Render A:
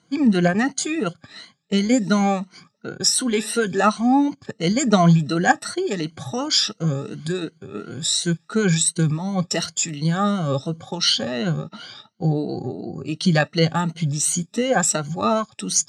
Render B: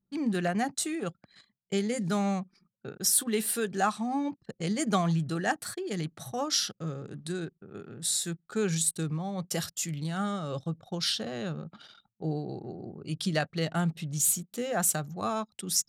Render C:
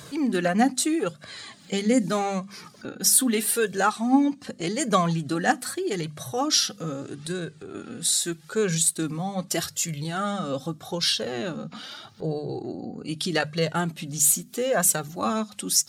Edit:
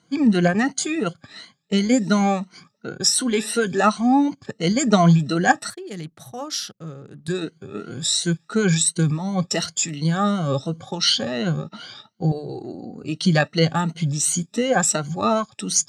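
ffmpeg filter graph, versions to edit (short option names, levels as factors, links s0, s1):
-filter_complex "[0:a]asplit=3[s0][s1][s2];[s0]atrim=end=5.702[s3];[1:a]atrim=start=5.698:end=7.282[s4];[s1]atrim=start=7.278:end=12.322[s5];[2:a]atrim=start=12.318:end=13.042[s6];[s2]atrim=start=13.038[s7];[s3][s4]acrossfade=d=0.004:c1=hsin:c2=hsin[s8];[s8][s5]acrossfade=d=0.004:c1=hsin:c2=hsin[s9];[s9][s6]acrossfade=d=0.004:c1=hsin:c2=hsin[s10];[s10][s7]acrossfade=d=0.004:c1=hsin:c2=hsin"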